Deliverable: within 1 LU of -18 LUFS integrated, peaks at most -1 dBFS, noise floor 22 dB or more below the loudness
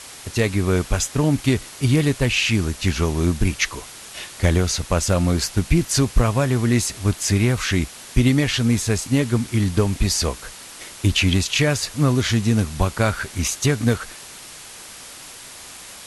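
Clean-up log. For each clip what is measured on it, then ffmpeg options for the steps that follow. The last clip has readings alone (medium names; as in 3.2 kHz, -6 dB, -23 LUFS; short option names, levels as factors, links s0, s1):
noise floor -40 dBFS; noise floor target -43 dBFS; loudness -20.5 LUFS; peak level -2.5 dBFS; loudness target -18.0 LUFS
-> -af "afftdn=nr=6:nf=-40"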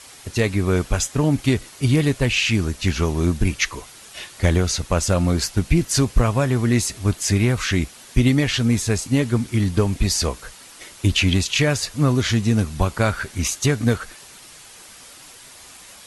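noise floor -44 dBFS; loudness -20.5 LUFS; peak level -2.5 dBFS; loudness target -18.0 LUFS
-> -af "volume=1.33,alimiter=limit=0.891:level=0:latency=1"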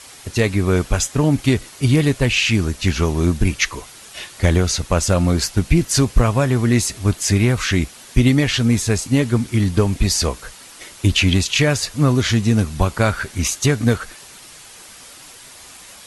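loudness -18.0 LUFS; peak level -1.0 dBFS; noise floor -41 dBFS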